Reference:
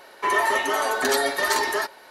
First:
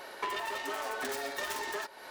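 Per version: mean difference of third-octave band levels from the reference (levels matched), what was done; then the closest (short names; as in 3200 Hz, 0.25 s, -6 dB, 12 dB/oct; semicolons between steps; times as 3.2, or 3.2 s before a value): 5.5 dB: self-modulated delay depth 0.18 ms; compressor 16:1, threshold -34 dBFS, peak gain reduction 17 dB; gain +1.5 dB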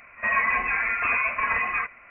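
14.5 dB: reverse echo 60 ms -20.5 dB; inverted band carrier 2900 Hz; gain -1.5 dB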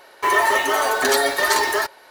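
2.0 dB: bell 210 Hz -5 dB 0.8 oct; in parallel at -4.5 dB: bit-crush 5-bit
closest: third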